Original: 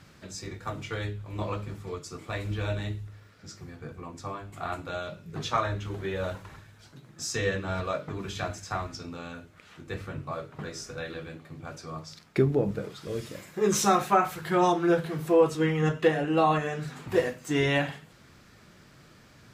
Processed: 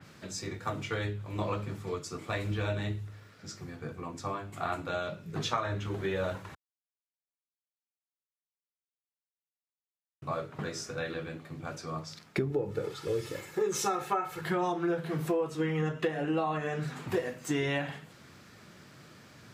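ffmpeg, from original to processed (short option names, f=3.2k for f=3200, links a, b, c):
-filter_complex "[0:a]asettb=1/sr,asplit=3[a][b][c];[a]atrim=end=12.504[d];[b]atrim=start=12.5:end=14.41,asetpts=PTS-STARTPTS,afade=t=in:d=0.004:c=qsin,afade=t=out:st=1.906:d=0.004:c=qsin,aecho=1:1:2.3:0.65,atrim=end_sample=84231[e];[c]atrim=start=14.406[f];[d][e]acrossfade=d=0.004:c1=hsin:c2=qsin[g];[g][f]acrossfade=d=0.004:c1=qsin:c2=hsin,asplit=3[h][i][j];[h]atrim=end=6.55,asetpts=PTS-STARTPTS,afade=t=out:st=6.546:d=0.004:c=hsin[k];[i]atrim=start=6.55:end=10.22,asetpts=PTS-STARTPTS,volume=0[l];[j]atrim=start=10.22,asetpts=PTS-STARTPTS,afade=t=in:d=0.004:c=hsin[m];[k][l][m]concat=n=3:v=0:a=1,highpass=92,acompressor=threshold=-28dB:ratio=10,adynamicequalizer=threshold=0.00355:dfrequency=3200:dqfactor=0.7:tfrequency=3200:tqfactor=0.7:attack=5:release=100:ratio=0.375:range=2.5:mode=cutabove:tftype=highshelf,volume=1.5dB"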